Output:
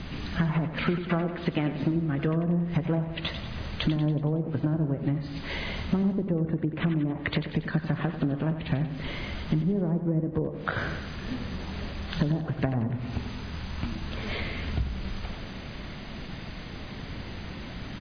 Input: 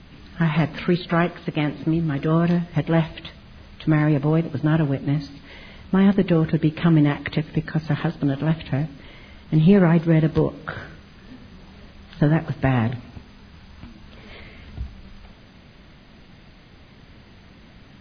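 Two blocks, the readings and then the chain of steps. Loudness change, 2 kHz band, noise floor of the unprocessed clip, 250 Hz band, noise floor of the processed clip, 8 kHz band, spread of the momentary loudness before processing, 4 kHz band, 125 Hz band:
-9.0 dB, -4.5 dB, -48 dBFS, -7.0 dB, -39 dBFS, n/a, 15 LU, 0.0 dB, -6.5 dB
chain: treble ducked by the level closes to 660 Hz, closed at -14.5 dBFS; compressor 12:1, threshold -32 dBFS, peak gain reduction 22.5 dB; on a send: feedback echo 93 ms, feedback 53%, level -10 dB; on the sum: gain +8.5 dB

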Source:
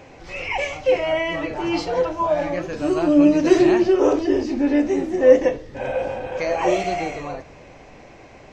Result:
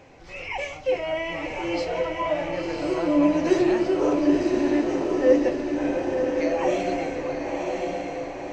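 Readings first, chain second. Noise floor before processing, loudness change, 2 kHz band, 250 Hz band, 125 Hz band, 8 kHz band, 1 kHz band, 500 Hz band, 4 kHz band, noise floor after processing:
-45 dBFS, -4.5 dB, -4.0 dB, -3.5 dB, -3.5 dB, n/a, -4.0 dB, -4.5 dB, -4.0 dB, -39 dBFS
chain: on a send: diffused feedback echo 1.019 s, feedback 53%, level -3 dB; on the sum: gain -6 dB

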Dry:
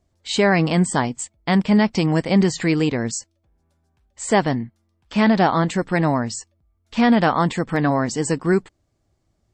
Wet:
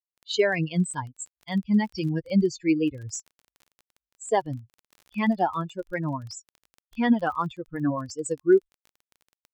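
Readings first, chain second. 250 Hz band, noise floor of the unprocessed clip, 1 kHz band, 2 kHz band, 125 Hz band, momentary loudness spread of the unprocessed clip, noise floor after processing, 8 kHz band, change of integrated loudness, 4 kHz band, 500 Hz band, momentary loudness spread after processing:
-7.0 dB, -69 dBFS, -8.0 dB, -8.5 dB, -9.0 dB, 11 LU, under -85 dBFS, -8.0 dB, -6.5 dB, -8.5 dB, -5.0 dB, 15 LU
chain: per-bin expansion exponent 3; bell 370 Hz +6.5 dB 0.5 oct; crackle 20/s -37 dBFS; gain -1.5 dB

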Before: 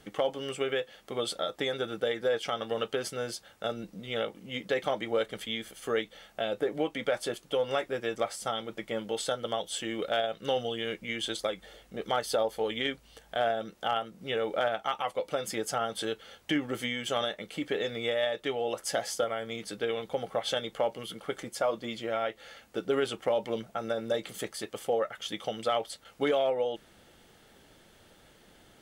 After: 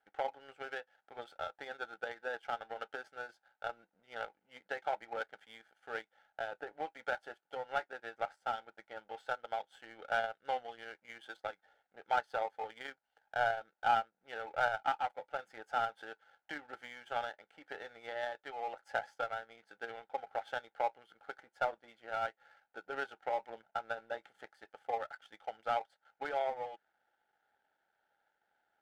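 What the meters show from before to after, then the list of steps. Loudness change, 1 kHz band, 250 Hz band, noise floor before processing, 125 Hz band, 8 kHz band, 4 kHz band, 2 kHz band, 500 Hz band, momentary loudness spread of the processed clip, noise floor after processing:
-7.5 dB, -1.5 dB, -21.0 dB, -60 dBFS, -17.5 dB, under -20 dB, -16.0 dB, -3.0 dB, -11.5 dB, 16 LU, -85 dBFS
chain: double band-pass 1100 Hz, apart 0.81 oct; power-law curve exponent 1.4; gain +6.5 dB

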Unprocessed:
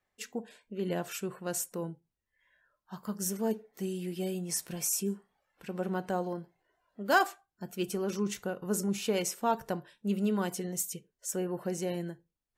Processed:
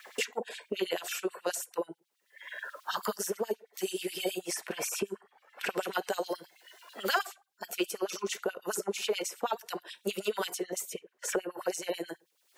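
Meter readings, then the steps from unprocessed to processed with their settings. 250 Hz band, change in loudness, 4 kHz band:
-6.5 dB, -1.0 dB, +5.5 dB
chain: LFO high-pass sine 9.3 Hz 380–3700 Hz; three-band squash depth 100%

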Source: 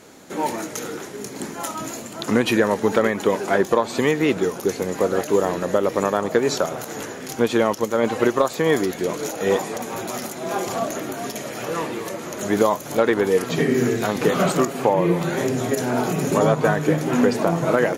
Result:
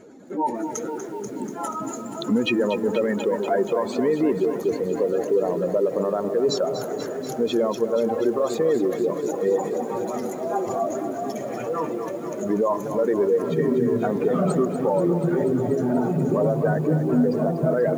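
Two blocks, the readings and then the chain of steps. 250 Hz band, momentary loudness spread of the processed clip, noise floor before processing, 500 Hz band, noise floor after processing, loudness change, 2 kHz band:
-1.0 dB, 8 LU, -35 dBFS, -1.0 dB, -33 dBFS, -2.0 dB, -10.0 dB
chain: spectral contrast raised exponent 2; de-hum 169.1 Hz, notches 8; limiter -13.5 dBFS, peak gain reduction 6 dB; lo-fi delay 0.242 s, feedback 80%, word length 8-bit, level -10.5 dB

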